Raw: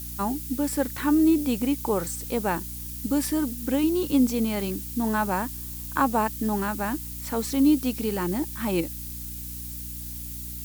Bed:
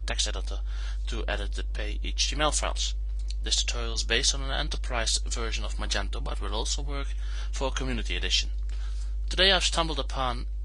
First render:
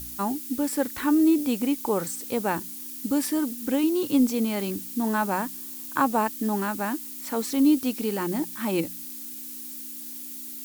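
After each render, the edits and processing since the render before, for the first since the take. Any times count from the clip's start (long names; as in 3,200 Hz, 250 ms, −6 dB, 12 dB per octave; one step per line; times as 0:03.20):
hum removal 60 Hz, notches 3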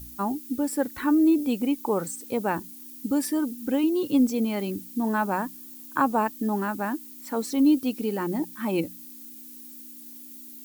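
broadband denoise 9 dB, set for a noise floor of −38 dBFS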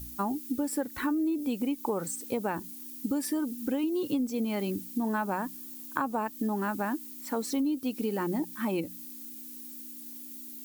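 downward compressor 10 to 1, threshold −26 dBFS, peak gain reduction 11 dB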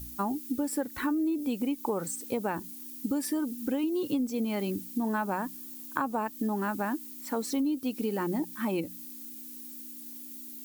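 no processing that can be heard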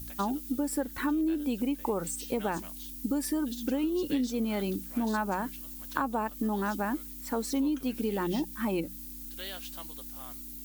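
mix in bed −20.5 dB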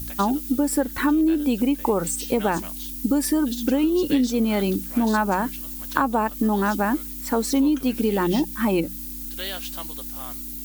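level +9 dB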